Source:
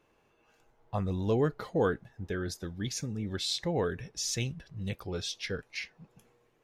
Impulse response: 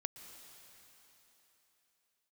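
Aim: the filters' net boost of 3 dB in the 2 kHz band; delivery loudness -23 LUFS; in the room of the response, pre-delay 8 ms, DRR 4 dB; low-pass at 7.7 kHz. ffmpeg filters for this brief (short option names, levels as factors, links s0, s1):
-filter_complex "[0:a]lowpass=7700,equalizer=f=2000:t=o:g=4,asplit=2[s0][s1];[1:a]atrim=start_sample=2205,adelay=8[s2];[s1][s2]afir=irnorm=-1:irlink=0,volume=0.794[s3];[s0][s3]amix=inputs=2:normalize=0,volume=2.82"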